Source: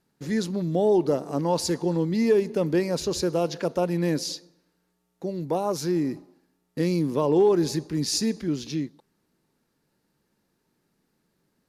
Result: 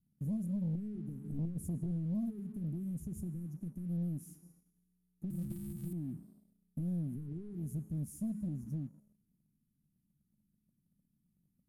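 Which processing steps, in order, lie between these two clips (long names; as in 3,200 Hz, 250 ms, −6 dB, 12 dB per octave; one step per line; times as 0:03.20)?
0:05.30–0:05.93: samples sorted by size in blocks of 128 samples
tuned comb filter 210 Hz, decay 1.2 s, mix 70%
downward compressor 2.5 to 1, threshold −45 dBFS, peak gain reduction 14 dB
0:01.24–0:01.91: low shelf with overshoot 790 Hz +7.5 dB, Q 3
soft clipping −37.5 dBFS, distortion −9 dB
inverse Chebyshev band-stop filter 630–4,400 Hz, stop band 60 dB
leveller curve on the samples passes 1
low-pass filter 10,000 Hz 12 dB per octave
level +11 dB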